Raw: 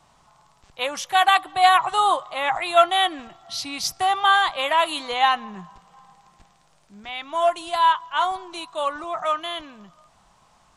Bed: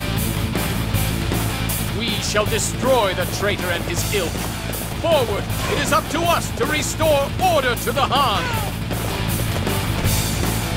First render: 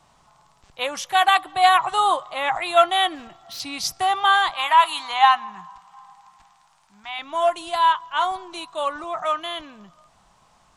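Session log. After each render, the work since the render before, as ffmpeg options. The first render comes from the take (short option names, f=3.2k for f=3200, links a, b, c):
-filter_complex "[0:a]asettb=1/sr,asplit=3[a][b][c];[a]atrim=end=3.154[d];[b]atrim=start=3.15:end=3.6,asetpts=PTS-STARTPTS,afade=t=in:d=0.004:c=qsin,afade=t=out:st=0.446:d=0.004:c=qsin,volume=33.5dB,asoftclip=hard,volume=-33.5dB[e];[c]atrim=start=3.596[f];[d][e]acrossfade=d=0.004:c1=hsin:c2=qsin[g];[g][f]acrossfade=d=0.004:c1=qsin:c2=hsin,asettb=1/sr,asplit=3[h][i][j];[h]atrim=end=4.544[k];[i]atrim=start=4.54:end=7.19,asetpts=PTS-STARTPTS,afade=t=in:d=0.004:c=qsin,afade=t=out:st=2.646:d=0.004:c=qsin,lowshelf=f=670:t=q:w=3:g=-9[l];[j]atrim=start=7.186[m];[k][l]acrossfade=d=0.004:c1=hsin:c2=qsin[n];[n][m]acrossfade=d=0.004:c1=qsin:c2=hsin"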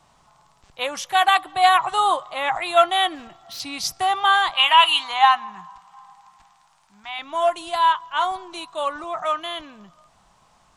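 -filter_complex "[0:a]asettb=1/sr,asplit=3[a][b][c];[a]atrim=end=4.574[d];[b]atrim=start=4.57:end=5.04,asetpts=PTS-STARTPTS,afade=t=in:d=0.004:c=qsin,afade=t=out:st=0.466:d=0.004:c=qsin,equalizer=f=2.9k:w=3.7:g=14[e];[c]atrim=start=5.036[f];[d][e]acrossfade=d=0.004:c1=hsin:c2=qsin[g];[g][f]acrossfade=d=0.004:c1=qsin:c2=hsin"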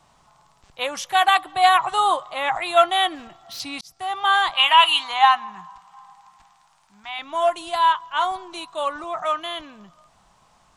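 -filter_complex "[0:a]asplit=2[a][b];[a]atrim=end=3.81,asetpts=PTS-STARTPTS,afade=t=out:st=3.806:d=0.004:c=hsin[c];[b]atrim=start=3.81,asetpts=PTS-STARTPTS,afade=t=in:d=0.58[d];[c][d]concat=n=2:v=0:a=1"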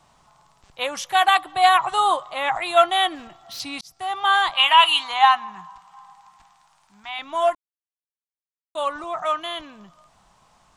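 -filter_complex "[0:a]asplit=3[a][b][c];[a]atrim=end=7.55,asetpts=PTS-STARTPTS,afade=t=out:st=7.546:d=0.004:c=hsin[d];[b]atrim=start=7.55:end=8.75,asetpts=PTS-STARTPTS,volume=0[e];[c]atrim=start=8.75,asetpts=PTS-STARTPTS,afade=t=in:d=0.004:c=hsin[f];[d][e][f]concat=n=3:v=0:a=1"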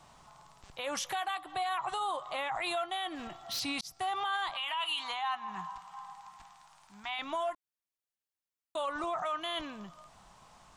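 -af "acompressor=threshold=-26dB:ratio=10,alimiter=level_in=2.5dB:limit=-24dB:level=0:latency=1:release=16,volume=-2.5dB"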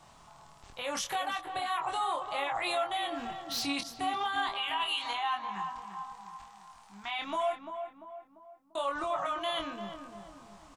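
-filter_complex "[0:a]asplit=2[a][b];[b]adelay=25,volume=-4dB[c];[a][c]amix=inputs=2:normalize=0,asplit=2[d][e];[e]adelay=344,lowpass=f=1.3k:p=1,volume=-7dB,asplit=2[f][g];[g]adelay=344,lowpass=f=1.3k:p=1,volume=0.5,asplit=2[h][i];[i]adelay=344,lowpass=f=1.3k:p=1,volume=0.5,asplit=2[j][k];[k]adelay=344,lowpass=f=1.3k:p=1,volume=0.5,asplit=2[l][m];[m]adelay=344,lowpass=f=1.3k:p=1,volume=0.5,asplit=2[n][o];[o]adelay=344,lowpass=f=1.3k:p=1,volume=0.5[p];[f][h][j][l][n][p]amix=inputs=6:normalize=0[q];[d][q]amix=inputs=2:normalize=0"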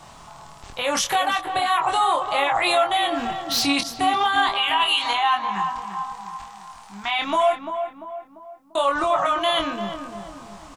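-af "volume=12dB"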